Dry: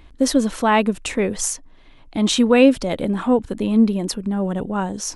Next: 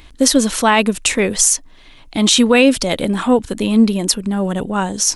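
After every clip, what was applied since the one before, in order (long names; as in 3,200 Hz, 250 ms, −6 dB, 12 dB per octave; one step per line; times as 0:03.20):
high-shelf EQ 2,200 Hz +12 dB
boost into a limiter +4 dB
level −1 dB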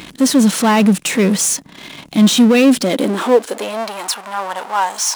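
power curve on the samples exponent 0.5
harmonic and percussive parts rebalanced percussive −4 dB
high-pass filter sweep 170 Hz → 890 Hz, 0:02.60–0:03.99
level −5 dB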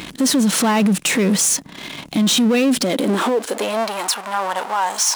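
brickwall limiter −12.5 dBFS, peak gain reduction 11 dB
level +2 dB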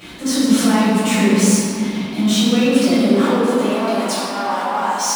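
convolution reverb RT60 3.0 s, pre-delay 6 ms, DRR −14 dB
level −15.5 dB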